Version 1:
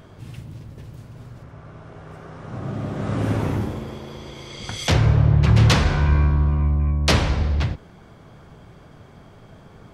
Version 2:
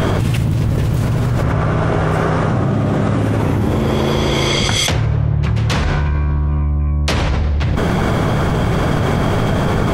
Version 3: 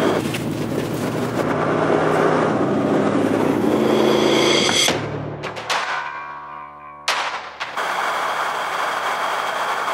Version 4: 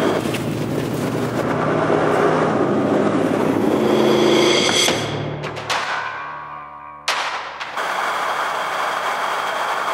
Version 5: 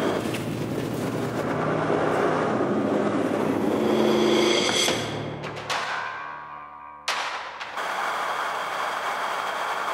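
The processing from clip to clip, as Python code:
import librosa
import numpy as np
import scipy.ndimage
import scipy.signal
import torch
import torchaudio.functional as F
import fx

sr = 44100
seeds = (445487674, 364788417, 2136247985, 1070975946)

y1 = fx.peak_eq(x, sr, hz=4800.0, db=-2.5, octaves=0.77)
y1 = fx.env_flatten(y1, sr, amount_pct=100)
y1 = y1 * 10.0 ** (-3.5 / 20.0)
y2 = fx.filter_sweep_highpass(y1, sr, from_hz=300.0, to_hz=960.0, start_s=5.23, end_s=5.86, q=1.4)
y3 = fx.rev_freeverb(y2, sr, rt60_s=2.3, hf_ratio=0.5, predelay_ms=80, drr_db=8.5)
y3 = fx.end_taper(y3, sr, db_per_s=170.0)
y4 = fx.rev_plate(y3, sr, seeds[0], rt60_s=0.9, hf_ratio=0.9, predelay_ms=0, drr_db=9.5)
y4 = y4 * 10.0 ** (-6.5 / 20.0)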